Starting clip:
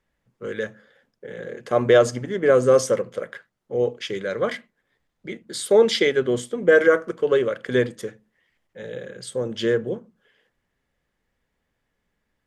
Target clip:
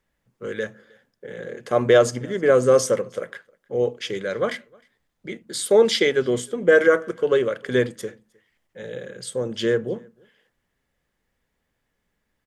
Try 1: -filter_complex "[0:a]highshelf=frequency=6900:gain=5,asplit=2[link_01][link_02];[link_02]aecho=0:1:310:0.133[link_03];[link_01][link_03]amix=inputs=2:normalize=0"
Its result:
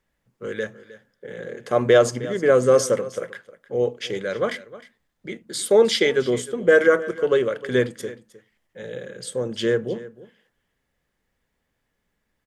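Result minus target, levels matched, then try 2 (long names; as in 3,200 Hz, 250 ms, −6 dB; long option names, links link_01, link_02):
echo-to-direct +11.5 dB
-filter_complex "[0:a]highshelf=frequency=6900:gain=5,asplit=2[link_01][link_02];[link_02]aecho=0:1:310:0.0355[link_03];[link_01][link_03]amix=inputs=2:normalize=0"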